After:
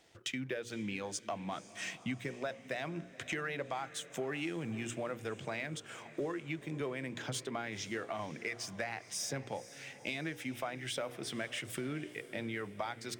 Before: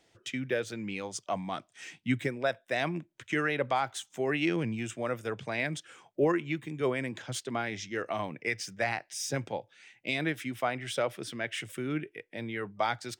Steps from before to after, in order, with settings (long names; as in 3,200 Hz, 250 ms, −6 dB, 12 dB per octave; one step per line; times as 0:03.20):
mains-hum notches 60/120/180/240/300/360/420/480/540 Hz
downward compressor 6 to 1, threshold −42 dBFS, peak gain reduction 18 dB
leveller curve on the samples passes 1
feedback delay with all-pass diffusion 498 ms, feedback 51%, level −16 dB
level +2 dB